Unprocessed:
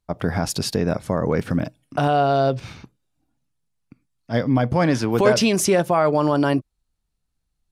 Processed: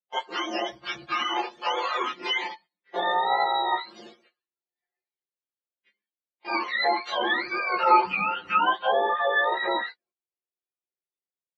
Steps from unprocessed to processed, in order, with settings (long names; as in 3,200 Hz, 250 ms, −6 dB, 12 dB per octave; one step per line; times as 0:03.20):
frequency axis turned over on the octave scale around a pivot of 730 Hz
high-pass filter 350 Hz 24 dB per octave
noise gate −44 dBFS, range −14 dB
low-pass filter 3,000 Hz 12 dB per octave
in parallel at 0 dB: downward compressor, threshold −28 dBFS, peak gain reduction 14 dB
on the sum: pitch vibrato 1.9 Hz 60 cents
time stretch by overlap-add 1.5×, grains 34 ms
barber-pole flanger 7.2 ms +0.34 Hz